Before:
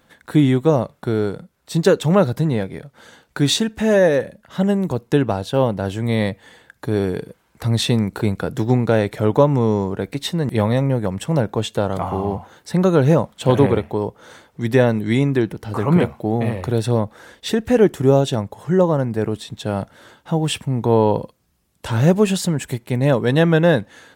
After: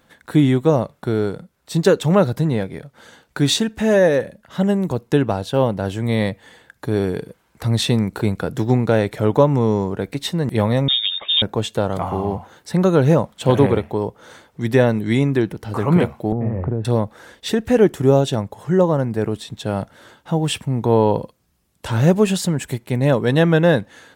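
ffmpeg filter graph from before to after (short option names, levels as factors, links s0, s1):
-filter_complex "[0:a]asettb=1/sr,asplit=3[s0][s1][s2];[s0]atrim=end=10.884[s3];[s1]atrim=start=10.88:end=11.42,asetpts=PTS-STARTPTS,afade=t=in:d=0.004:c=qsin,afade=t=out:st=0.536:d=0.004:c=qsin,acompressor=mode=upward:threshold=0.0501:ratio=2.5:attack=3.2:release=140:knee=2.83:detection=peak,lowpass=f=3200:t=q:w=0.5098,lowpass=f=3200:t=q:w=0.6013,lowpass=f=3200:t=q:w=0.9,lowpass=f=3200:t=q:w=2.563,afreqshift=-3800[s4];[s2]atrim=start=11.416[s5];[s3][s4]acrossfade=d=0.004:c1=hsin:c2=qsin[s6];[s6][s5]acrossfade=d=0.004:c1=qsin:c2=hsin,asettb=1/sr,asplit=3[s7][s8][s9];[s7]atrim=end=16.324[s10];[s8]atrim=start=16.32:end=16.85,asetpts=PTS-STARTPTS,afade=t=in:d=0.004:c=qsin,afade=t=out:st=0.526:d=0.004:c=qsin,lowpass=f=2100:w=0.5412,lowpass=f=2100:w=1.3066,acompressor=threshold=0.0794:ratio=5:attack=3.2:release=140:knee=1:detection=peak,tiltshelf=f=700:g=7[s11];[s9]atrim=start=16.846[s12];[s10][s11]acrossfade=d=0.004:c1=hsin:c2=qsin[s13];[s13][s12]acrossfade=d=0.004:c1=qsin:c2=hsin"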